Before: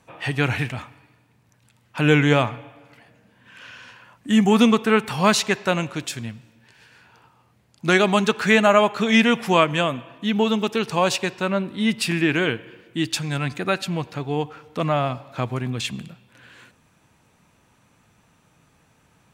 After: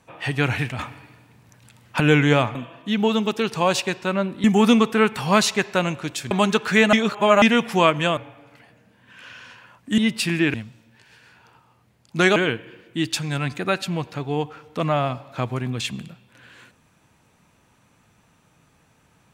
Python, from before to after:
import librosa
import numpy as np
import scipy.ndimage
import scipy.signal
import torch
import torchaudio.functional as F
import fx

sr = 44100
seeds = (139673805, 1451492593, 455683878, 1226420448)

y = fx.edit(x, sr, fx.clip_gain(start_s=0.79, length_s=1.21, db=8.0),
    fx.swap(start_s=2.55, length_s=1.81, other_s=9.91, other_length_s=1.89),
    fx.move(start_s=6.23, length_s=1.82, to_s=12.36),
    fx.reverse_span(start_s=8.67, length_s=0.49), tone=tone)